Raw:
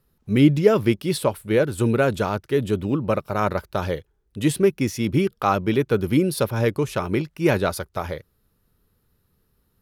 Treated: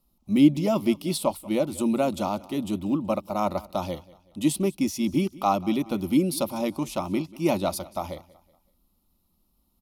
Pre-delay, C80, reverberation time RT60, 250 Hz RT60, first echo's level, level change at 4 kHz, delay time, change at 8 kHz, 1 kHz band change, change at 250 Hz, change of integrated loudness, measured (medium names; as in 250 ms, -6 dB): no reverb, no reverb, no reverb, no reverb, -21.0 dB, -2.5 dB, 187 ms, -0.5 dB, -2.0 dB, -1.5 dB, -4.0 dB